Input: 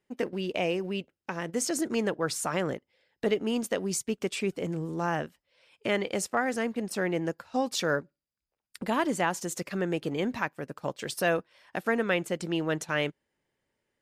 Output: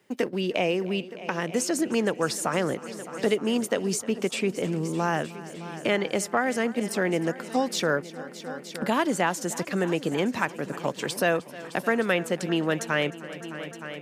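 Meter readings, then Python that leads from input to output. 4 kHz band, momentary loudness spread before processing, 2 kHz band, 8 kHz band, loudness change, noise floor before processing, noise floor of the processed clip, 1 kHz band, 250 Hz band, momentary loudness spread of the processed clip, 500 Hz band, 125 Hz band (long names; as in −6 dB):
+4.0 dB, 7 LU, +3.5 dB, +2.5 dB, +3.5 dB, below −85 dBFS, −43 dBFS, +3.5 dB, +4.0 dB, 11 LU, +3.5 dB, +3.5 dB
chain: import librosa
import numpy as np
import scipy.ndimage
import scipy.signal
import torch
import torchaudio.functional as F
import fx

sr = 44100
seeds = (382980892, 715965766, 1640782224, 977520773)

p1 = scipy.signal.sosfilt(scipy.signal.butter(2, 110.0, 'highpass', fs=sr, output='sos'), x)
p2 = p1 + fx.echo_heads(p1, sr, ms=306, heads='all three', feedback_pct=43, wet_db=-21, dry=0)
p3 = fx.band_squash(p2, sr, depth_pct=40)
y = p3 * 10.0 ** (3.5 / 20.0)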